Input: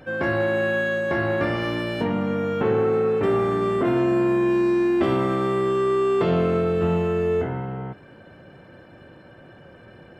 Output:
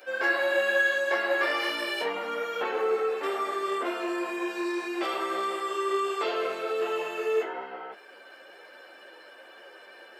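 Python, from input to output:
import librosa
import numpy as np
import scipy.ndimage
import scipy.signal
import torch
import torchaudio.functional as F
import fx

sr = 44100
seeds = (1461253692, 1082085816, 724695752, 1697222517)

y = fx.peak_eq(x, sr, hz=4700.0, db=3.5, octaves=0.28)
y = fx.rider(y, sr, range_db=4, speed_s=2.0)
y = scipy.signal.sosfilt(scipy.signal.butter(4, 370.0, 'highpass', fs=sr, output='sos'), y)
y = fx.tilt_eq(y, sr, slope=3.0)
y = fx.ensemble(y, sr)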